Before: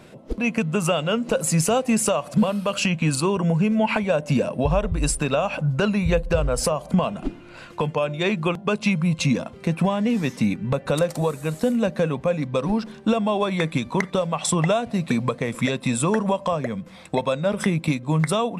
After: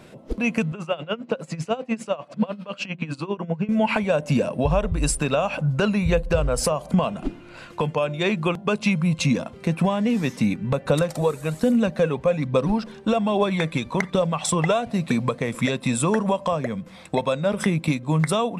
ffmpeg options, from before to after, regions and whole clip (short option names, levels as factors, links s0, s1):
-filter_complex "[0:a]asettb=1/sr,asplit=3[s0][s1][s2];[s0]atrim=end=0.724[s3];[s1]atrim=start=0.72:end=3.69,asetpts=PTS-STARTPTS,afade=t=in:d=0.004:c=qsin,afade=t=out:st=2.966:d=0.004:c=qsin,highpass=130,lowpass=3700,bandreject=f=60:t=h:w=6,bandreject=f=120:t=h:w=6,bandreject=f=180:t=h:w=6,bandreject=f=240:t=h:w=6,bandreject=f=300:t=h:w=6,bandreject=f=360:t=h:w=6,aeval=exprs='val(0)*pow(10,-19*(0.5-0.5*cos(2*PI*10*n/s))/20)':c=same[s4];[s2]atrim=start=3.686[s5];[s3][s4]acrossfade=d=0.004:c1=hsin:c2=qsin[s6];[s6][s5]acrossfade=d=0.004:c1=qsin:c2=hsin,asettb=1/sr,asplit=3[s7][s8][s9];[s7]atrim=end=10.904[s10];[s8]atrim=start=10.9:end=14.87,asetpts=PTS-STARTPTS,afade=t=in:d=0.004:c=qsin,afade=t=out:st=3.966:d=0.004:c=qsin,highshelf=f=8400:g=-4,aphaser=in_gain=1:out_gain=1:delay=2.5:decay=0.34:speed=1.2:type=triangular[s11];[s9]atrim=start=14.866[s12];[s10][s11]acrossfade=d=0.004:c1=hsin:c2=qsin[s13];[s13][s12]acrossfade=d=0.004:c1=qsin:c2=hsin"